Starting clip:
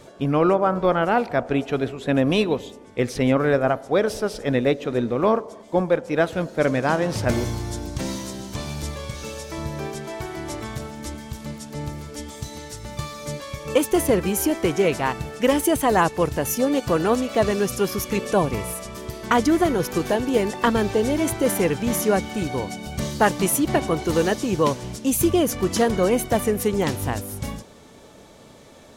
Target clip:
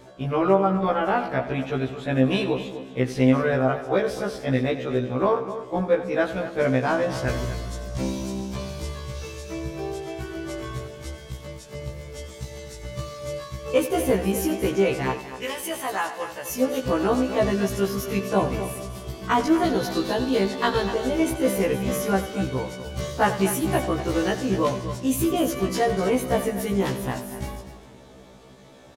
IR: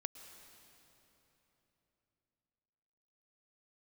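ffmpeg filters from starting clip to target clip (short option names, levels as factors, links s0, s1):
-filter_complex "[0:a]asettb=1/sr,asplit=3[s0][s1][s2];[s0]atrim=end=15.184[s3];[s1]atrim=start=15.18:end=16.51,asetpts=PTS-STARTPTS,afade=t=in:d=0.004:c=qsin,afade=t=out:st=1.326:d=0.004:c=qsin,highpass=f=1500:p=1[s4];[s2]atrim=start=16.506[s5];[s3][s4]acrossfade=d=0.004:c1=hsin:c2=qsin[s6];[s6][s5]acrossfade=d=0.004:c1=qsin:c2=hsin,asettb=1/sr,asplit=3[s7][s8][s9];[s7]atrim=end=19.644[s10];[s8]atrim=start=19.64:end=20.86,asetpts=PTS-STARTPTS,afade=t=in:d=0.004:c=qsin,afade=t=out:st=1.216:d=0.004:c=qsin,equalizer=f=4100:t=o:w=0.36:g=13.5[s11];[s9]atrim=start=20.856[s12];[s10][s11]acrossfade=d=0.004:c1=hsin:c2=qsin[s13];[s13][s12]acrossfade=d=0.004:c1=qsin:c2=hsin,aecho=1:1:89|246:0.211|0.251,asplit=2[s14][s15];[1:a]atrim=start_sample=2205,lowpass=5700[s16];[s15][s16]afir=irnorm=-1:irlink=0,volume=0.75[s17];[s14][s17]amix=inputs=2:normalize=0,afftfilt=real='re*1.73*eq(mod(b,3),0)':imag='im*1.73*eq(mod(b,3),0)':win_size=2048:overlap=0.75,volume=0.668"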